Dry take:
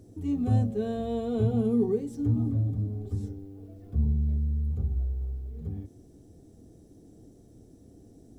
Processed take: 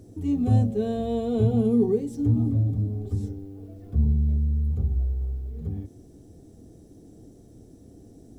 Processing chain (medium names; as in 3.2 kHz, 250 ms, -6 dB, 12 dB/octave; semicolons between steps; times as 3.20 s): dynamic bell 1.4 kHz, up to -5 dB, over -56 dBFS, Q 1.7; trim +4 dB